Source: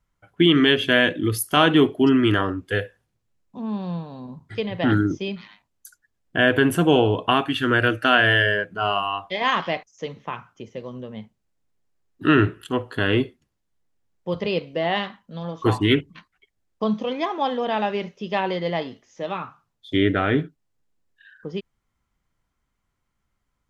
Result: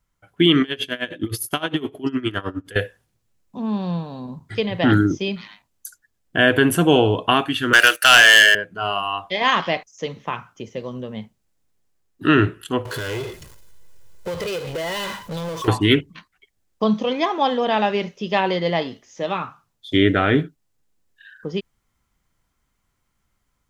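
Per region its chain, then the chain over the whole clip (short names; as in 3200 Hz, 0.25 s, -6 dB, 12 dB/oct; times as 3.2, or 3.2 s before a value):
0.62–2.76 compressor, threshold -19 dBFS + flutter echo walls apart 10.2 m, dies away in 0.26 s + dB-linear tremolo 9.7 Hz, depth 20 dB
7.73–8.55 HPF 390 Hz 24 dB/oct + tilt +4.5 dB/oct + sample leveller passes 2
12.85–15.68 comb 2 ms, depth 81% + compressor 8:1, threshold -33 dBFS + power-law curve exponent 0.5
whole clip: high shelf 4700 Hz +6.5 dB; AGC gain up to 4 dB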